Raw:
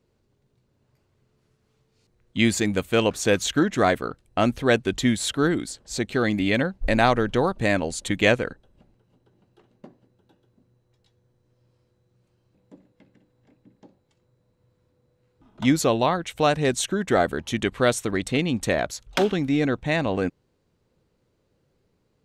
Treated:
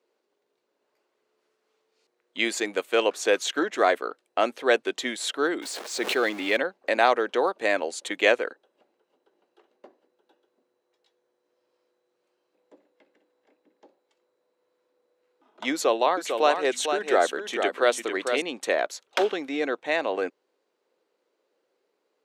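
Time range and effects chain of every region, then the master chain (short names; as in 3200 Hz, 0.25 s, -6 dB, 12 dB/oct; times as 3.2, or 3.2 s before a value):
5.62–6.57 zero-crossing step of -32 dBFS + sustainer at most 28 dB/s
15.72–18.42 notches 50/100/150/200/250 Hz + echo 0.449 s -6.5 dB
whole clip: HPF 370 Hz 24 dB/oct; high shelf 6000 Hz -7 dB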